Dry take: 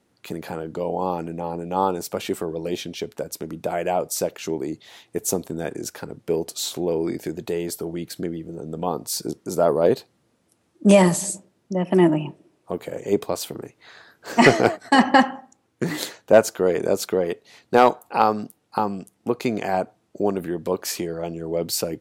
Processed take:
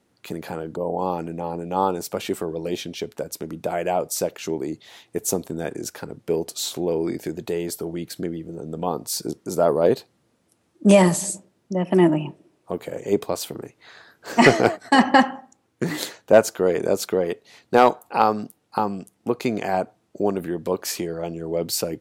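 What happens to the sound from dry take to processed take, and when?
0.76–0.98 spectral gain 1200–7700 Hz -20 dB

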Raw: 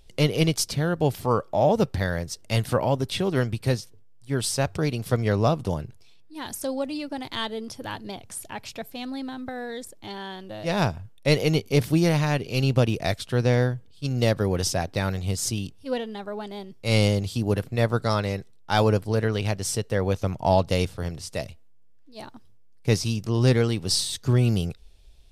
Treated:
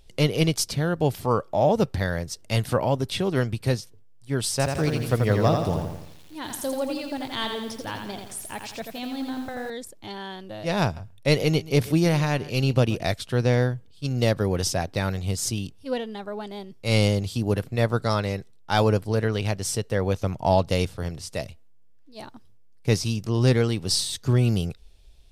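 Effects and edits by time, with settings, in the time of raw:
4.51–9.7 lo-fi delay 85 ms, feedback 55%, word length 8-bit, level -4.5 dB
10.83–13.03 echo 0.131 s -19 dB

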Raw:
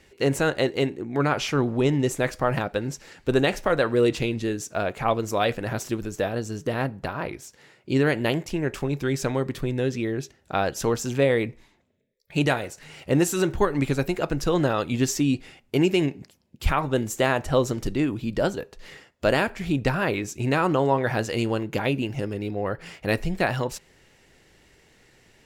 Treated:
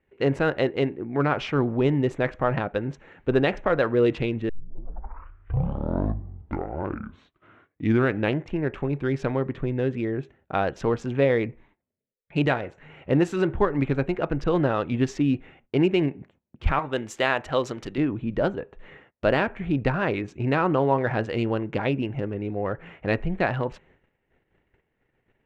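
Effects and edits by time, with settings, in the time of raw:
4.49 tape start 4.10 s
16.79–17.98 tilt +3 dB/oct
whole clip: Wiener smoothing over 9 samples; LPF 3000 Hz 12 dB/oct; gate -56 dBFS, range -16 dB

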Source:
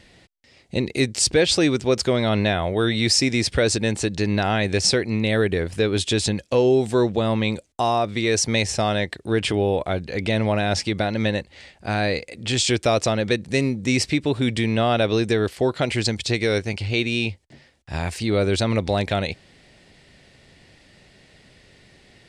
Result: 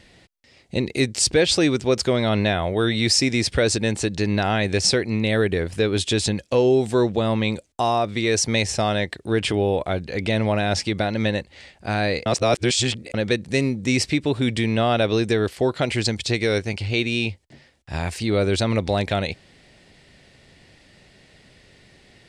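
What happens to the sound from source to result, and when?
12.26–13.14 reverse

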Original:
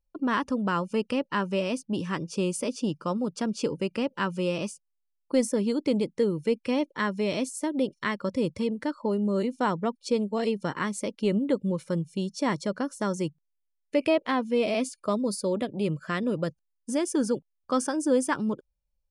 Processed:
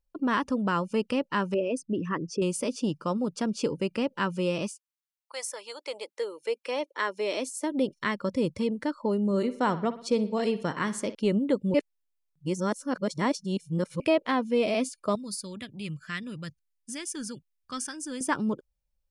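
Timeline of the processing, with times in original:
1.54–2.42 formant sharpening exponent 2
4.67–7.7 HPF 1100 Hz -> 270 Hz 24 dB/oct
9.25–11.15 analogue delay 60 ms, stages 2048, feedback 49%, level -14.5 dB
11.74–14 reverse
15.15–18.21 EQ curve 100 Hz 0 dB, 560 Hz -20 dB, 900 Hz -14 dB, 1900 Hz 0 dB

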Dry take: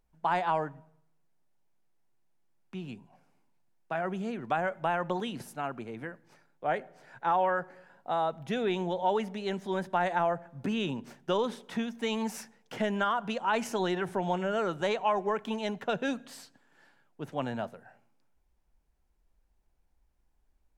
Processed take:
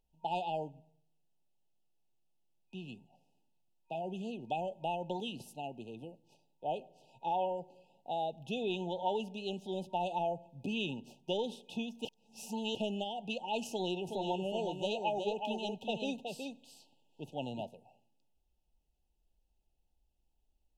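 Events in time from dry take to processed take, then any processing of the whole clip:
12.05–12.75 reverse
13.7–17.63 echo 0.37 s -5.5 dB
whole clip: FFT band-reject 930–2500 Hz; bell 2700 Hz +6 dB 1.2 oct; gain -6 dB

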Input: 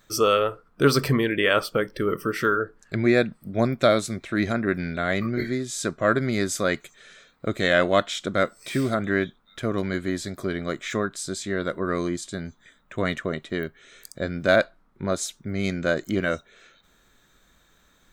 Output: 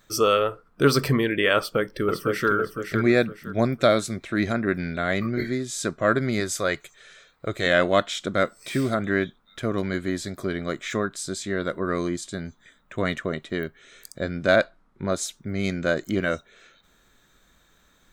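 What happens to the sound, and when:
1.57–2.5 echo throw 0.51 s, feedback 30%, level -6 dB
6.4–7.66 bell 230 Hz -9 dB
14.32–15.11 LPF 11000 Hz

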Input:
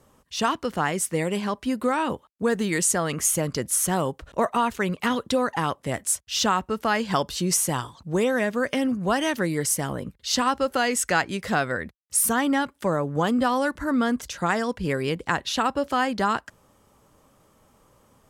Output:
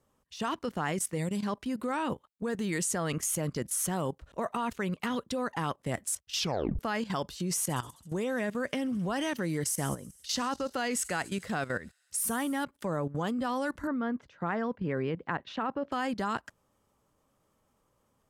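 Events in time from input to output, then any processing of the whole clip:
1.18–1.46 spectral gain 250–3400 Hz -7 dB
6.37 tape stop 0.42 s
7.63–12.64 thin delay 66 ms, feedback 79%, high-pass 5300 Hz, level -14 dB
13.87–15.92 BPF 110–2000 Hz
whole clip: dynamic EQ 170 Hz, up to +3 dB, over -35 dBFS, Q 0.87; level quantiser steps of 14 dB; gain -3 dB

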